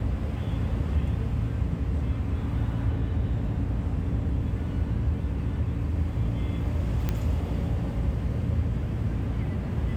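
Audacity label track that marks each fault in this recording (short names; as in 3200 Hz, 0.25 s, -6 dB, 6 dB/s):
7.090000	7.090000	pop -14 dBFS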